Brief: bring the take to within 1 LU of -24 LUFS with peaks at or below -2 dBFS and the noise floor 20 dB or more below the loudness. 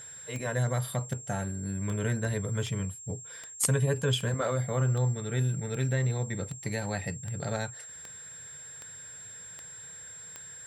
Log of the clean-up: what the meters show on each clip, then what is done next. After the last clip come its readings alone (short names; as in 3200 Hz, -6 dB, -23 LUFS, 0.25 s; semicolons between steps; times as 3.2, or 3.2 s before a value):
clicks 14; steady tone 7500 Hz; tone level -43 dBFS; loudness -31.0 LUFS; peak -12.0 dBFS; loudness target -24.0 LUFS
-> de-click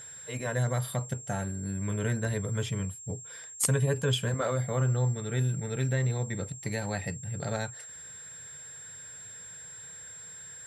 clicks 0; steady tone 7500 Hz; tone level -43 dBFS
-> notch 7500 Hz, Q 30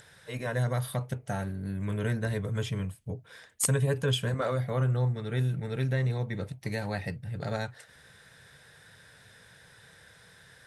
steady tone none; loudness -31.5 LUFS; peak -12.5 dBFS; loudness target -24.0 LUFS
-> gain +7.5 dB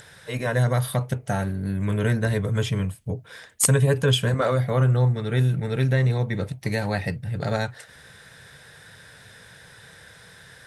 loudness -24.0 LUFS; peak -5.0 dBFS; noise floor -49 dBFS